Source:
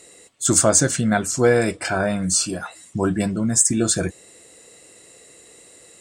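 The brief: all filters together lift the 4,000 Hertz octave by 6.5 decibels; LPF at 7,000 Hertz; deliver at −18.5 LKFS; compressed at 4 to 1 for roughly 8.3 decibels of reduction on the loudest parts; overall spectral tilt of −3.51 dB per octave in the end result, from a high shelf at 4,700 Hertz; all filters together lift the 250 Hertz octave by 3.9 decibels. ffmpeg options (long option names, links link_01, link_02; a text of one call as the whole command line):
ffmpeg -i in.wav -af "lowpass=7000,equalizer=frequency=250:width_type=o:gain=5,equalizer=frequency=4000:width_type=o:gain=7,highshelf=frequency=4700:gain=3.5,acompressor=threshold=-20dB:ratio=4,volume=5dB" out.wav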